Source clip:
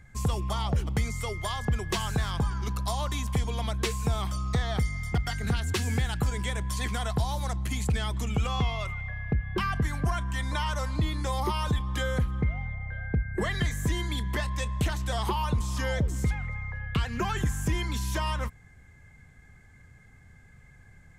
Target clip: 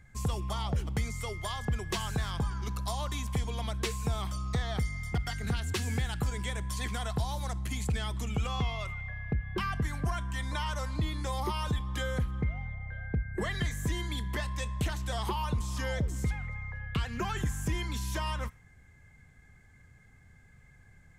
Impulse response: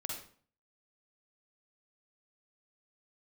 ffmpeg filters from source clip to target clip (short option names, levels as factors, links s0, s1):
-filter_complex "[0:a]asplit=2[s0][s1];[s1]highpass=1400[s2];[1:a]atrim=start_sample=2205[s3];[s2][s3]afir=irnorm=-1:irlink=0,volume=0.141[s4];[s0][s4]amix=inputs=2:normalize=0,volume=0.631"